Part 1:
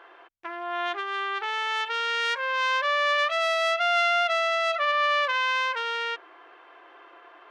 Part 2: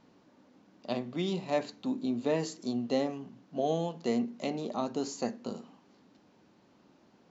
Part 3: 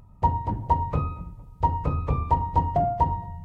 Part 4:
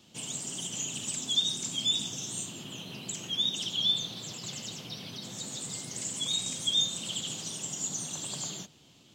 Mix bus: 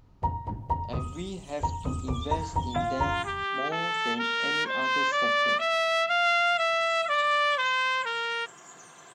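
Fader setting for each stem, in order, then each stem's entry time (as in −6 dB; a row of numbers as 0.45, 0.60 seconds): −1.0, −5.0, −6.5, −17.5 decibels; 2.30, 0.00, 0.00, 0.85 seconds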